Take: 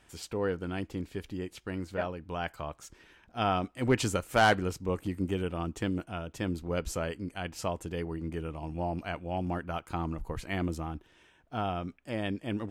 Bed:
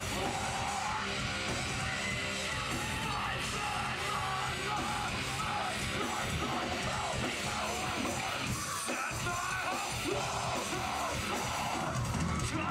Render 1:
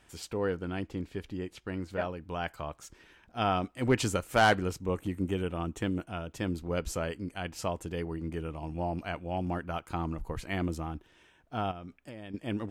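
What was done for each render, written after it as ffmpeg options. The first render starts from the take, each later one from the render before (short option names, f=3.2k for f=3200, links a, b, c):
-filter_complex "[0:a]asettb=1/sr,asplit=3[a][b][c];[a]atrim=end=0.604[d];[b]atrim=start=0.6:end=1.9,asetpts=PTS-STARTPTS,afade=t=in:d=0.004:c=qsin,afade=t=out:st=1.296:d=0.004:c=qsin,highshelf=f=6.9k:g=-7.5[e];[c]atrim=start=1.896[f];[d][e]acrossfade=d=0.004:c1=hsin:c2=qsin[g];[g][f]acrossfade=d=0.004:c1=qsin:c2=hsin,asettb=1/sr,asplit=3[h][i][j];[h]atrim=end=4.794[k];[i]atrim=start=4.79:end=6.07,asetpts=PTS-STARTPTS,afade=t=in:d=0.004:c=qsin,afade=t=out:st=1.276:d=0.004:c=qsin,equalizer=f=4.8k:w=7.7:g=-11.5[l];[j]atrim=start=6.066[m];[k][l]acrossfade=d=0.004:c1=hsin:c2=qsin[n];[n][m]acrossfade=d=0.004:c1=qsin:c2=hsin,asettb=1/sr,asplit=3[o][p][q];[o]atrim=end=11.714[r];[p]atrim=start=11.71:end=12.34,asetpts=PTS-STARTPTS,afade=t=in:d=0.004:c=qsin,afade=t=out:st=0.626:d=0.004:c=qsin,acompressor=threshold=-39dB:ratio=10:attack=3.2:release=140:knee=1:detection=peak[s];[q]atrim=start=12.336[t];[r][s]acrossfade=d=0.004:c1=hsin:c2=qsin[u];[u][t]acrossfade=d=0.004:c1=qsin:c2=hsin"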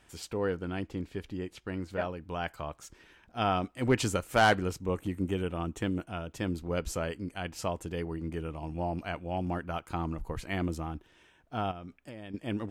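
-af anull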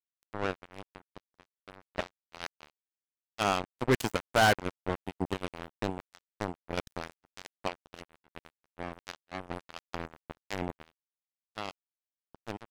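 -af "acrusher=bits=3:mix=0:aa=0.5"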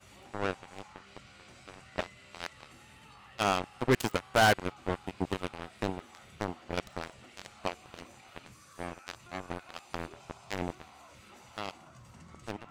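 -filter_complex "[1:a]volume=-20dB[a];[0:a][a]amix=inputs=2:normalize=0"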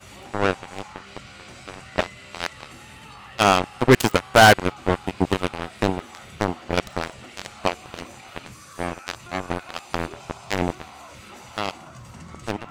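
-af "volume=11.5dB"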